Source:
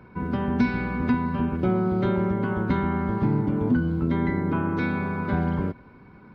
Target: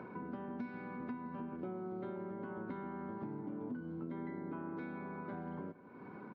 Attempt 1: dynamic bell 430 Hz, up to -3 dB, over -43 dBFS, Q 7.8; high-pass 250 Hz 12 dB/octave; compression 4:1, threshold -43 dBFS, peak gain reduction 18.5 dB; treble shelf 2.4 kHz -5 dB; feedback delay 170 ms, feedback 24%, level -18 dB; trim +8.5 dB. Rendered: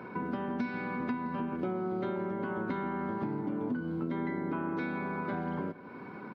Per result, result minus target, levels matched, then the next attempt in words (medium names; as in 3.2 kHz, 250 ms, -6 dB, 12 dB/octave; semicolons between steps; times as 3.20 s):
compression: peak gain reduction -8.5 dB; 4 kHz band +6.5 dB
dynamic bell 430 Hz, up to -3 dB, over -43 dBFS, Q 7.8; high-pass 250 Hz 12 dB/octave; compression 4:1, threshold -54.5 dBFS, peak gain reduction 27 dB; treble shelf 2.4 kHz -5 dB; feedback delay 170 ms, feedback 24%, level -18 dB; trim +8.5 dB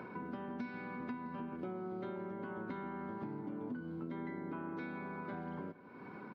4 kHz band +6.5 dB
dynamic bell 430 Hz, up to -3 dB, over -43 dBFS, Q 7.8; high-pass 250 Hz 12 dB/octave; compression 4:1, threshold -54.5 dBFS, peak gain reduction 27 dB; treble shelf 2.4 kHz -16 dB; feedback delay 170 ms, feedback 24%, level -18 dB; trim +8.5 dB